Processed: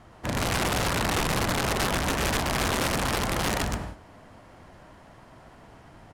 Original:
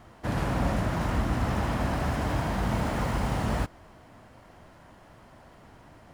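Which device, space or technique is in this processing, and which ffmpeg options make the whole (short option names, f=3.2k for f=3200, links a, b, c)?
overflowing digital effects unit: -af "aecho=1:1:120|198|248.7|281.7|303.1:0.631|0.398|0.251|0.158|0.1,aeval=exprs='(mod(10*val(0)+1,2)-1)/10':c=same,lowpass=13k"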